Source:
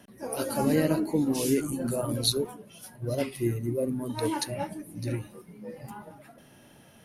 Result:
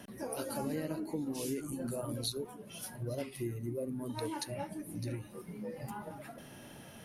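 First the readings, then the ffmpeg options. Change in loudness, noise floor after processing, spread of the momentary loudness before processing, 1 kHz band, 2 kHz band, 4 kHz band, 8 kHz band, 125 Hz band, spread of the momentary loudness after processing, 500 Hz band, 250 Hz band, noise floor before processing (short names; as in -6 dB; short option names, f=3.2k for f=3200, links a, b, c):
-10.5 dB, -52 dBFS, 18 LU, -7.5 dB, -8.5 dB, -10.5 dB, -8.5 dB, -8.5 dB, 10 LU, -9.5 dB, -10.0 dB, -55 dBFS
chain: -af "acompressor=threshold=-43dB:ratio=3,volume=3.5dB"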